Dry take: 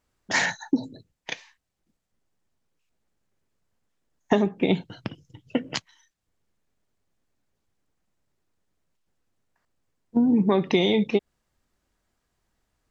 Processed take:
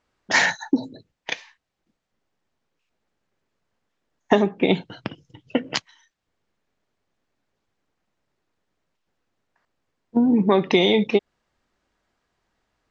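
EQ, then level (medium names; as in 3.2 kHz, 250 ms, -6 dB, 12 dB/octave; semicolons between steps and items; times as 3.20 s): bass shelf 200 Hz -9.5 dB; dynamic bell 6.4 kHz, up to +4 dB, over -43 dBFS, Q 0.96; distance through air 100 m; +6.0 dB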